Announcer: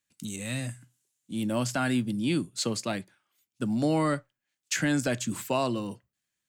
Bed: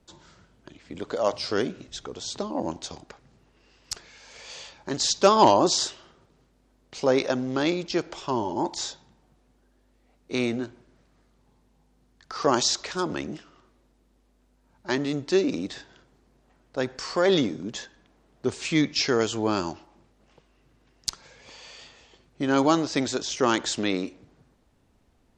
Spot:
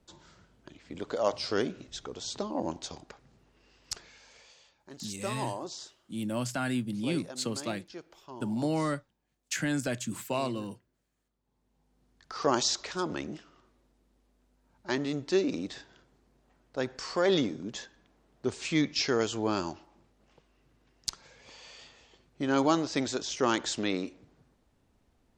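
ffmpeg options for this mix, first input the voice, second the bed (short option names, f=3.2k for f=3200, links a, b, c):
-filter_complex "[0:a]adelay=4800,volume=-4dB[a];[1:a]volume=10.5dB,afade=t=out:st=4.03:d=0.52:silence=0.177828,afade=t=in:st=11.43:d=0.67:silence=0.199526[b];[a][b]amix=inputs=2:normalize=0"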